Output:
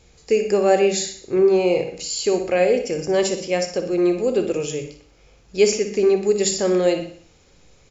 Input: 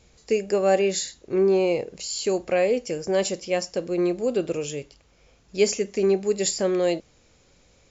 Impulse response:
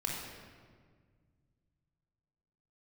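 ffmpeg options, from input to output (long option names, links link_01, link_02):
-filter_complex "[0:a]aecho=1:1:60|120|180|240|300:0.237|0.119|0.0593|0.0296|0.0148,asplit=2[link_01][link_02];[1:a]atrim=start_sample=2205,atrim=end_sample=6174[link_03];[link_02][link_03]afir=irnorm=-1:irlink=0,volume=-6dB[link_04];[link_01][link_04]amix=inputs=2:normalize=0"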